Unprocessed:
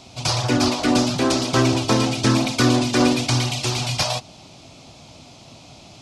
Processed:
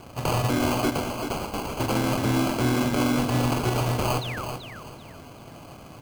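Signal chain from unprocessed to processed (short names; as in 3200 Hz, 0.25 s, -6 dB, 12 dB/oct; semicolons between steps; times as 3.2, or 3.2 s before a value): 0.9–1.8 differentiator; limiter -15 dBFS, peak gain reduction 10.5 dB; sample-and-hold 24×; 4.21–4.45 painted sound fall 940–4400 Hz -36 dBFS; feedback echo 0.384 s, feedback 27%, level -8 dB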